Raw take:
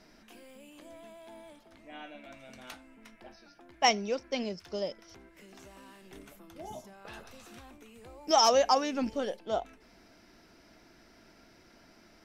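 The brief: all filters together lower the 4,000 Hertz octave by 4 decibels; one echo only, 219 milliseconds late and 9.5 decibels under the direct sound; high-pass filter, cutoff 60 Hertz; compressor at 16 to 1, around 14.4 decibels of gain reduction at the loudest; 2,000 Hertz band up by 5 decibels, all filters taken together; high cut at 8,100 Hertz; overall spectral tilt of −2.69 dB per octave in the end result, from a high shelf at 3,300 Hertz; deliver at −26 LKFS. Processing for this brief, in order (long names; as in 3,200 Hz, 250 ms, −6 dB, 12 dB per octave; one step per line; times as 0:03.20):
high-pass filter 60 Hz
low-pass filter 8,100 Hz
parametric band 2,000 Hz +8 dB
high-shelf EQ 3,300 Hz −3 dB
parametric band 4,000 Hz −5.5 dB
downward compressor 16 to 1, threshold −33 dBFS
single-tap delay 219 ms −9.5 dB
level +17 dB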